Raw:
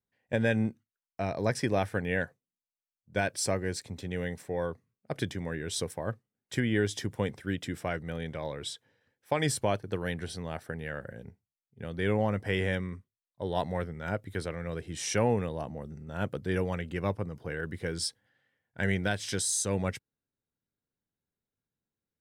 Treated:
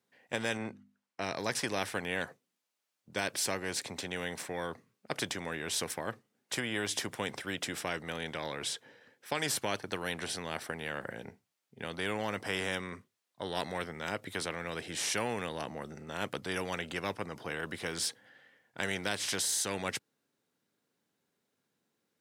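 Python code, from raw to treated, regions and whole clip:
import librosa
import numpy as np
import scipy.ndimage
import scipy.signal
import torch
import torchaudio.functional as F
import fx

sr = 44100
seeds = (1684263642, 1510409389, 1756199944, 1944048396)

y = fx.chain(x, sr, fx.lowpass(hz=12000.0, slope=12),
    fx.high_shelf(hz=3000.0, db=-8.5),
    fx.hum_notches(base_hz=50, count=5), at=(0.57, 1.22))
y = scipy.signal.sosfilt(scipy.signal.butter(2, 220.0, 'highpass', fs=sr, output='sos'), y)
y = fx.high_shelf(y, sr, hz=10000.0, db=-8.0)
y = fx.spectral_comp(y, sr, ratio=2.0)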